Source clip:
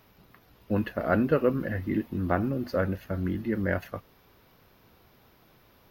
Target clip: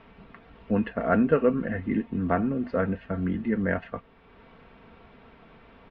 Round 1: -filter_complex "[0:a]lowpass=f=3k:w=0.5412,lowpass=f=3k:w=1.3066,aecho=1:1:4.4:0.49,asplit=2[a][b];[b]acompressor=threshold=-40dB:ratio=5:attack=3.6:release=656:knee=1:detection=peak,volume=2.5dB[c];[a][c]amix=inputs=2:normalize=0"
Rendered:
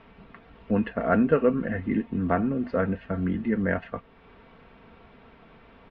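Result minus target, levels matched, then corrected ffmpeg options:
compressor: peak gain reduction -5 dB
-filter_complex "[0:a]lowpass=f=3k:w=0.5412,lowpass=f=3k:w=1.3066,aecho=1:1:4.4:0.49,asplit=2[a][b];[b]acompressor=threshold=-46.5dB:ratio=5:attack=3.6:release=656:knee=1:detection=peak,volume=2.5dB[c];[a][c]amix=inputs=2:normalize=0"

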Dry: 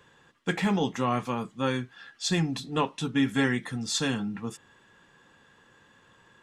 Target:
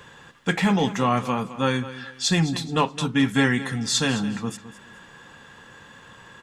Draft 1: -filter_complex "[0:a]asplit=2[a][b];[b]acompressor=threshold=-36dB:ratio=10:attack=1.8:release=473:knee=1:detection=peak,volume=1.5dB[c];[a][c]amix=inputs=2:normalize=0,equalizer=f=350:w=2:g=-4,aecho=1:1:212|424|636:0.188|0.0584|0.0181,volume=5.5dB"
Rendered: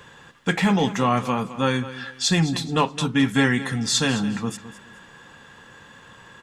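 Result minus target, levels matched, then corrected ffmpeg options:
compressor: peak gain reduction -10 dB
-filter_complex "[0:a]asplit=2[a][b];[b]acompressor=threshold=-47dB:ratio=10:attack=1.8:release=473:knee=1:detection=peak,volume=1.5dB[c];[a][c]amix=inputs=2:normalize=0,equalizer=f=350:w=2:g=-4,aecho=1:1:212|424|636:0.188|0.0584|0.0181,volume=5.5dB"

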